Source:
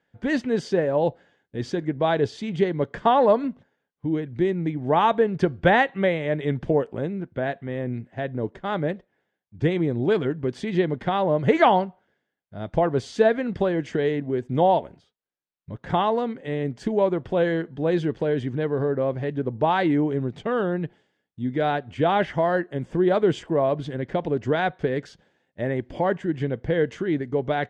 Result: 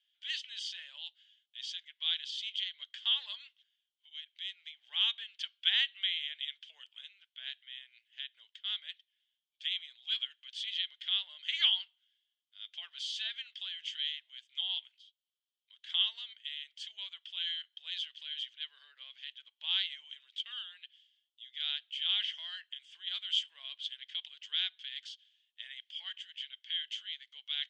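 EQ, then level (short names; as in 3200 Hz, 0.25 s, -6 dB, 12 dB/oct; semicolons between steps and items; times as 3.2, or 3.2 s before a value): ladder high-pass 3000 Hz, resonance 80%; air absorption 51 m; tilt +1.5 dB/oct; +5.5 dB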